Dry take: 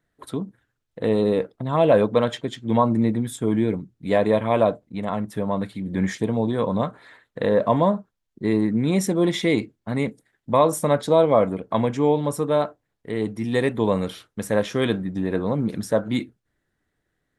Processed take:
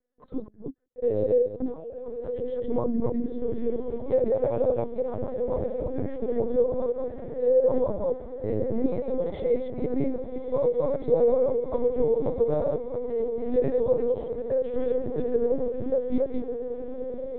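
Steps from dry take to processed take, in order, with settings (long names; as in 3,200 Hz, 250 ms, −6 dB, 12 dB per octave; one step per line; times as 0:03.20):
delay that plays each chunk backwards 173 ms, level −4 dB
spectral tilt +2 dB per octave
brickwall limiter −13.5 dBFS, peak gain reduction 7.5 dB
0:01.47–0:02.69: compressor whose output falls as the input rises −34 dBFS, ratio −1
pair of resonant band-passes 360 Hz, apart 0.86 octaves
on a send: feedback delay with all-pass diffusion 1,209 ms, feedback 64%, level −8.5 dB
on the sum: linear-prediction vocoder at 8 kHz pitch kept
level +6 dB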